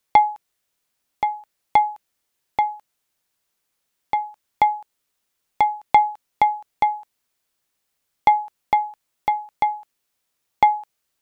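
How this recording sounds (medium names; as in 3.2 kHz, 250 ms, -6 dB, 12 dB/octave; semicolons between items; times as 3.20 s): noise floor -76 dBFS; spectral tilt -0.5 dB/octave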